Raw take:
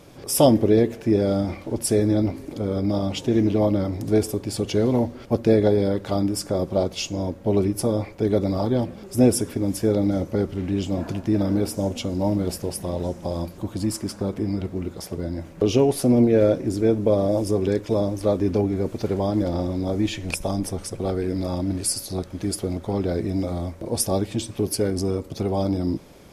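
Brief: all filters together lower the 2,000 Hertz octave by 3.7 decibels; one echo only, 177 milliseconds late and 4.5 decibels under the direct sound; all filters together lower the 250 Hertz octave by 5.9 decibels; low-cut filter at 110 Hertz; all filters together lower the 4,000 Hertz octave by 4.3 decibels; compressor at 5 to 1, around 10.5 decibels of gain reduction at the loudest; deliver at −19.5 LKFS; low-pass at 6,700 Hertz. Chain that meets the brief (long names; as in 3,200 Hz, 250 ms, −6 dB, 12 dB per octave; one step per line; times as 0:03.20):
high-pass filter 110 Hz
low-pass filter 6,700 Hz
parametric band 250 Hz −7.5 dB
parametric band 2,000 Hz −3.5 dB
parametric band 4,000 Hz −4 dB
downward compressor 5 to 1, threshold −25 dBFS
single-tap delay 177 ms −4.5 dB
level +10.5 dB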